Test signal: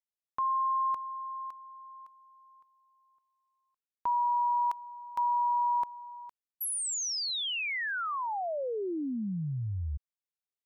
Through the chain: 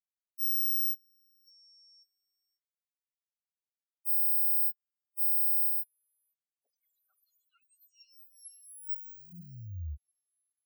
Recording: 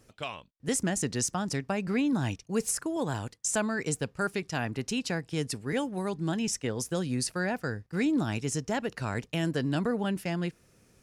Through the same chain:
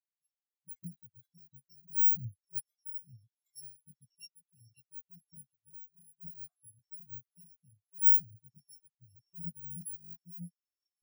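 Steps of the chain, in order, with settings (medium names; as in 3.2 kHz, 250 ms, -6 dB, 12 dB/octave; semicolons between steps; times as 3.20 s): bit-reversed sample order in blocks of 128 samples; repeats whose band climbs or falls 544 ms, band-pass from 3.7 kHz, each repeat 0.7 oct, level -1.5 dB; spectral contrast expander 4:1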